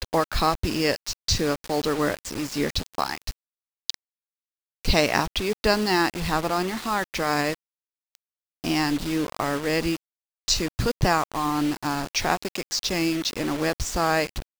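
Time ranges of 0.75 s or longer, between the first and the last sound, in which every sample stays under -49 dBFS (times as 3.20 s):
3.94–4.85 s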